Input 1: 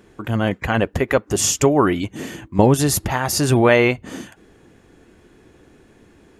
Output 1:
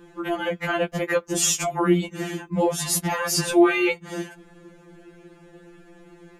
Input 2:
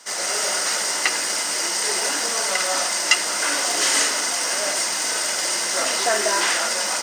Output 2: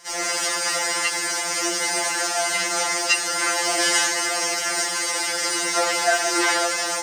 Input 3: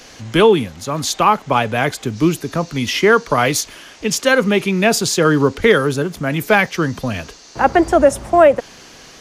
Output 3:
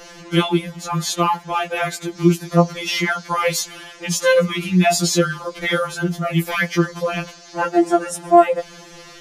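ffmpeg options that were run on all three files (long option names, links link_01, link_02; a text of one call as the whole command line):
ffmpeg -i in.wav -filter_complex "[0:a]acrossover=split=2500[link_01][link_02];[link_01]alimiter=limit=-12dB:level=0:latency=1:release=304[link_03];[link_02]flanger=delay=3.5:depth=7.3:regen=65:speed=1:shape=sinusoidal[link_04];[link_03][link_04]amix=inputs=2:normalize=0,afftfilt=real='re*2.83*eq(mod(b,8),0)':imag='im*2.83*eq(mod(b,8),0)':win_size=2048:overlap=0.75,volume=4.5dB" out.wav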